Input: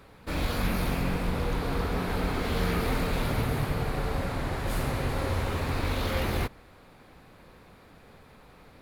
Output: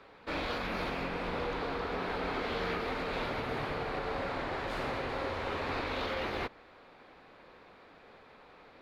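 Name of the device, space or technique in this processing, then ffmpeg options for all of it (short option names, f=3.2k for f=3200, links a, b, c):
DJ mixer with the lows and highs turned down: -filter_complex "[0:a]acrossover=split=280 5100:gain=0.2 1 0.0708[a][b][c];[a][b][c]amix=inputs=3:normalize=0,alimiter=level_in=1dB:limit=-24dB:level=0:latency=1:release=189,volume=-1dB"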